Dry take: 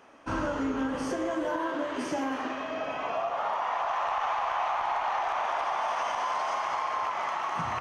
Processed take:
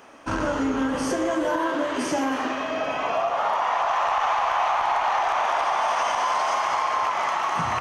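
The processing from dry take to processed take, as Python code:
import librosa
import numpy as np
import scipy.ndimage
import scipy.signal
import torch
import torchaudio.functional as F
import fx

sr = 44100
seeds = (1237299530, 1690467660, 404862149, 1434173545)

y = fx.high_shelf(x, sr, hz=5600.0, db=7.0)
y = fx.transformer_sat(y, sr, knee_hz=330.0)
y = y * 10.0 ** (6.5 / 20.0)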